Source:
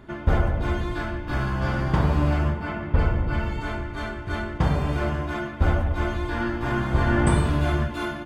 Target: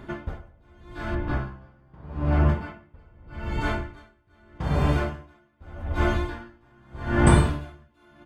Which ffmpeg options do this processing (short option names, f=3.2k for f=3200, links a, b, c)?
-filter_complex "[0:a]asplit=3[a][b][c];[a]afade=t=out:st=1.14:d=0.02[d];[b]lowpass=f=1.5k:p=1,afade=t=in:st=1.14:d=0.02,afade=t=out:st=2.48:d=0.02[e];[c]afade=t=in:st=2.48:d=0.02[f];[d][e][f]amix=inputs=3:normalize=0,aeval=exprs='val(0)*pow(10,-36*(0.5-0.5*cos(2*PI*0.82*n/s))/20)':c=same,volume=4dB"